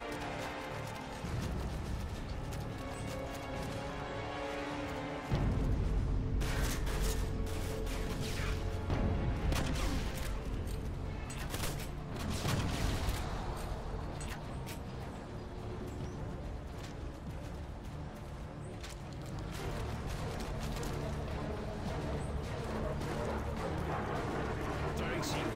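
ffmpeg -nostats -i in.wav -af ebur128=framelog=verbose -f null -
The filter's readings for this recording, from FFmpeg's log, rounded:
Integrated loudness:
  I:         -39.0 LUFS
  Threshold: -49.0 LUFS
Loudness range:
  LRA:         7.4 LU
  Threshold: -59.1 LUFS
  LRA low:   -43.9 LUFS
  LRA high:  -36.5 LUFS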